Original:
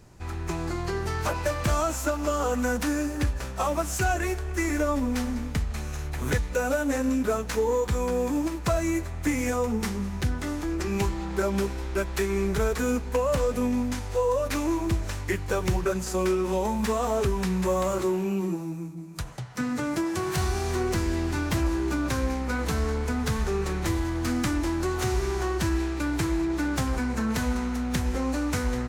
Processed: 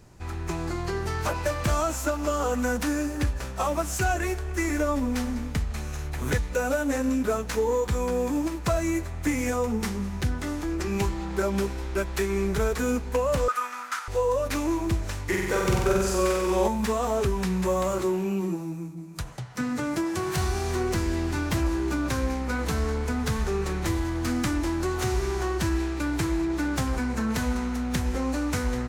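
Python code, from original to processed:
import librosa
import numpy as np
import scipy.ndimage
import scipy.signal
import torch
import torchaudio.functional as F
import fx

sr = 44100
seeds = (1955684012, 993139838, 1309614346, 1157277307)

y = fx.highpass_res(x, sr, hz=1300.0, q=8.7, at=(13.48, 14.08))
y = fx.room_flutter(y, sr, wall_m=8.0, rt60_s=1.3, at=(15.28, 16.67), fade=0.02)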